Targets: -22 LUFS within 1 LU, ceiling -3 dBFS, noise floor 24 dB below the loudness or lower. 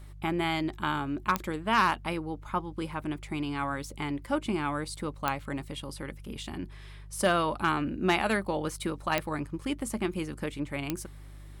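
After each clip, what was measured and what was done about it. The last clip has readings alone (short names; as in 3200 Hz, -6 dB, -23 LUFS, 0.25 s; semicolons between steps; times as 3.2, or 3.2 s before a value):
clicks 4; hum 50 Hz; harmonics up to 150 Hz; hum level -43 dBFS; loudness -31.5 LUFS; peak -10.5 dBFS; loudness target -22.0 LUFS
-> de-click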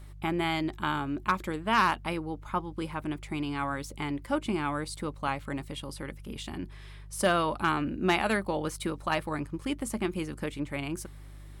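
clicks 0; hum 50 Hz; harmonics up to 150 Hz; hum level -43 dBFS
-> de-hum 50 Hz, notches 3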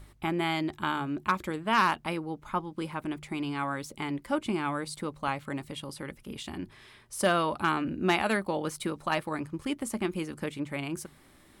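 hum none; loudness -31.5 LUFS; peak -14.5 dBFS; loudness target -22.0 LUFS
-> gain +9.5 dB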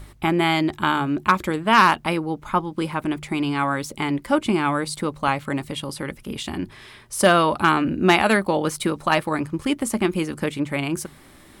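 loudness -22.0 LUFS; peak -5.0 dBFS; noise floor -49 dBFS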